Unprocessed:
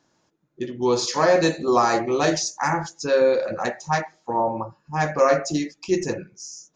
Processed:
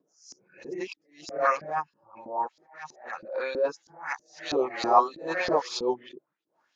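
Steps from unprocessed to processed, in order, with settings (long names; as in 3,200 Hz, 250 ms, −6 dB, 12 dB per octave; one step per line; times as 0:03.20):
played backwards from end to start
auto-filter band-pass saw up 3.1 Hz 280–4,400 Hz
level that may rise only so fast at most 130 dB per second
level +4.5 dB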